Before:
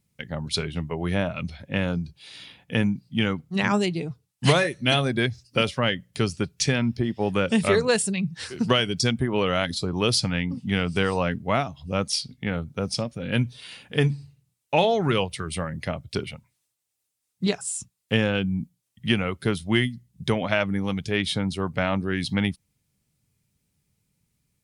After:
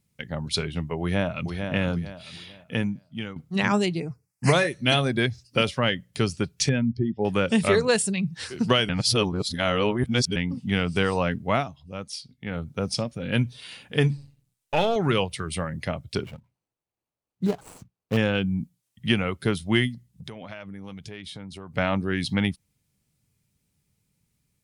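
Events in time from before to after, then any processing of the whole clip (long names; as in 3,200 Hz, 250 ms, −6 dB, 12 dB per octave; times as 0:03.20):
0:01.00–0:01.49: delay throw 450 ms, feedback 35%, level −6.5 dB
0:02.42–0:03.36: fade out, to −14 dB
0:04.00–0:04.53: Chebyshev band-stop filter 2,300–5,000 Hz
0:06.69–0:07.25: expanding power law on the bin magnitudes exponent 1.6
0:08.89–0:10.36: reverse
0:11.55–0:12.67: duck −10 dB, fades 0.28 s
0:14.17–0:14.96: gain on one half-wave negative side −7 dB
0:16.23–0:18.17: running median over 25 samples
0:19.94–0:21.75: downward compressor 5 to 1, threshold −37 dBFS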